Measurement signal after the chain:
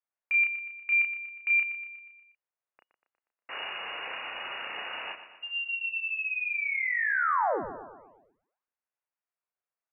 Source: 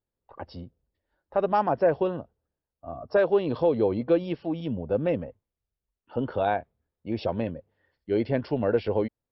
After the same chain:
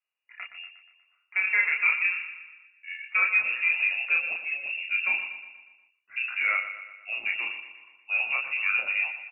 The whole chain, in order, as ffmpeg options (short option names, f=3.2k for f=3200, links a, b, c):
-filter_complex "[0:a]acontrast=83,lowpass=f=2.5k:t=q:w=0.5098,lowpass=f=2.5k:t=q:w=0.6013,lowpass=f=2.5k:t=q:w=0.9,lowpass=f=2.5k:t=q:w=2.563,afreqshift=-2900,acrossover=split=340 2100:gain=0.2 1 0.2[a][b][c];[a][b][c]amix=inputs=3:normalize=0,asplit=2[d][e];[e]adelay=32,volume=-3dB[f];[d][f]amix=inputs=2:normalize=0,aecho=1:1:120|240|360|480|600|720:0.282|0.152|0.0822|0.0444|0.024|0.0129,volume=-4.5dB"